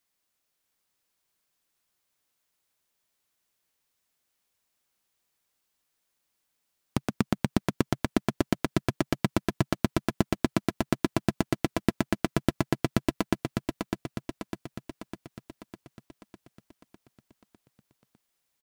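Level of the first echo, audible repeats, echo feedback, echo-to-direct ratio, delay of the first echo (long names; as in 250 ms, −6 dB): −5.0 dB, 7, 57%, −3.5 dB, 603 ms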